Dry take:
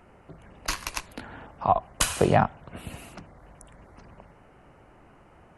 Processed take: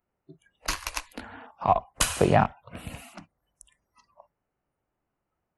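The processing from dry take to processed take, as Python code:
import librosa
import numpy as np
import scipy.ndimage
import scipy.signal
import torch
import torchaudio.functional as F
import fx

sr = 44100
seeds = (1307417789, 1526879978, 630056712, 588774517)

y = fx.rattle_buzz(x, sr, strikes_db=-35.0, level_db=-31.0)
y = fx.noise_reduce_blind(y, sr, reduce_db=28)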